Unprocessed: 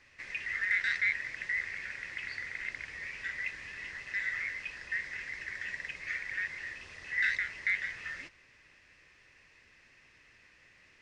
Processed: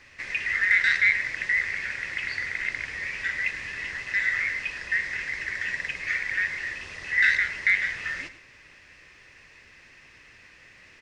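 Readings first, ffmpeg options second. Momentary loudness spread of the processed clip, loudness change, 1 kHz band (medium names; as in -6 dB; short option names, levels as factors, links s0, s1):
12 LU, +9.0 dB, +9.0 dB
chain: -af "aecho=1:1:104:0.211,volume=2.82"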